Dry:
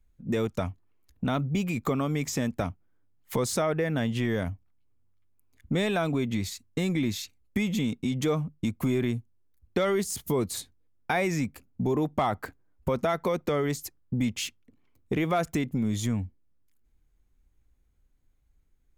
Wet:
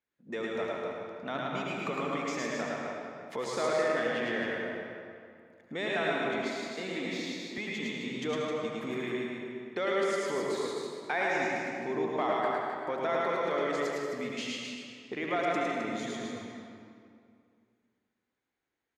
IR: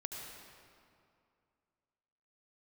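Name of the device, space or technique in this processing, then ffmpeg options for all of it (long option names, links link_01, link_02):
station announcement: -filter_complex "[0:a]highpass=370,lowpass=4900,equalizer=frequency=1800:width_type=o:width=0.38:gain=5,aecho=1:1:107.9|262.4:0.794|0.501[link_01];[1:a]atrim=start_sample=2205[link_02];[link_01][link_02]afir=irnorm=-1:irlink=0,asettb=1/sr,asplit=3[link_03][link_04][link_05];[link_03]atrim=end=6.454[link_06];[link_04]atrim=start=6.45:end=7.58,asetpts=PTS-STARTPTS,afade=type=in:duration=0.004:curve=qsin,afade=type=out:start_time=1.126:duration=0.004:curve=qsin,highpass=frequency=160:width=0.5412,highpass=frequency=160:width=1.3066[link_07];[link_05]atrim=start=7.576[link_08];[link_06][link_07]acrossfade=duration=0.004:curve1=hsin:curve2=qsin[link_09];[link_09][link_08]acrossfade=duration=0.004:curve1=qsin:curve2=hsin,volume=-2dB"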